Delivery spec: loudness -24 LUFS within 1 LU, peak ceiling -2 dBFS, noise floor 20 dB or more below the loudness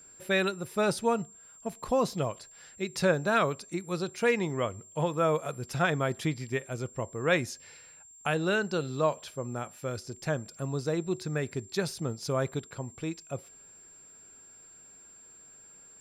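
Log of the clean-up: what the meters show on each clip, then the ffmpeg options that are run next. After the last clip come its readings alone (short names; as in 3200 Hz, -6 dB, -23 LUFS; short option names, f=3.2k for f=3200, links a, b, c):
steady tone 7400 Hz; tone level -51 dBFS; loudness -31.0 LUFS; peak -12.5 dBFS; loudness target -24.0 LUFS
-> -af "bandreject=f=7.4k:w=30"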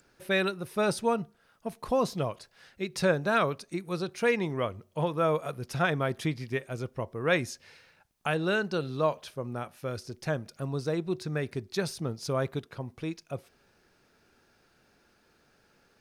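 steady tone none; loudness -31.0 LUFS; peak -12.5 dBFS; loudness target -24.0 LUFS
-> -af "volume=7dB"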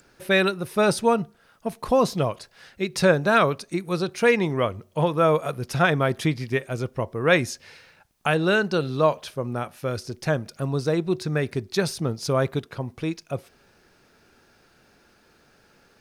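loudness -24.0 LUFS; peak -5.5 dBFS; noise floor -60 dBFS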